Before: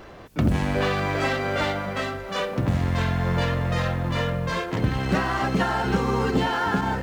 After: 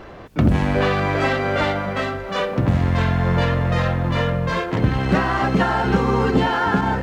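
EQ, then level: high shelf 5100 Hz -10 dB; +5.0 dB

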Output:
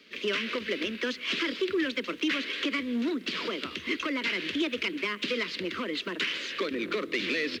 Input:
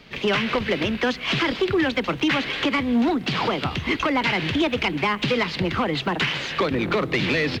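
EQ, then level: HPF 140 Hz 12 dB/oct; low shelf 290 Hz -5 dB; fixed phaser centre 330 Hz, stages 4; -4.5 dB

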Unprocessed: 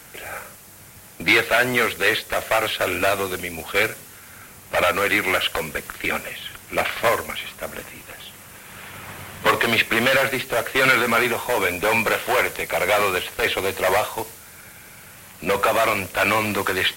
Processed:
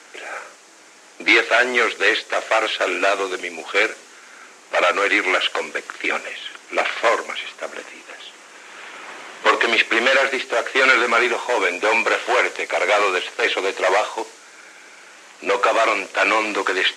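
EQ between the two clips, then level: elliptic band-pass 310–7000 Hz, stop band 80 dB; +2.5 dB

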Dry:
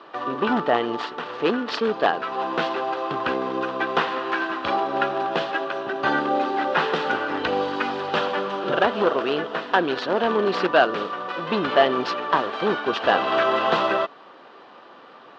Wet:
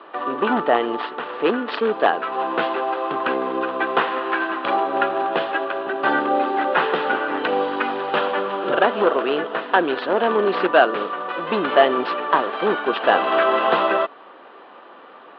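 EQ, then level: HPF 240 Hz 12 dB/oct; LPF 3800 Hz 24 dB/oct; air absorption 130 m; +3.5 dB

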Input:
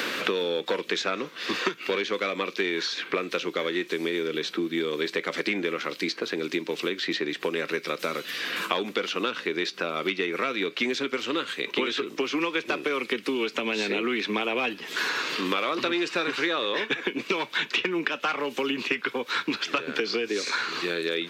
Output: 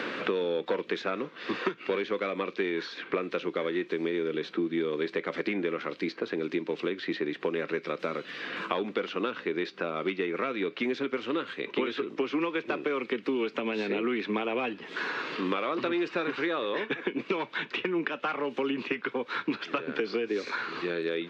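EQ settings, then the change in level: tape spacing loss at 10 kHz 29 dB; 0.0 dB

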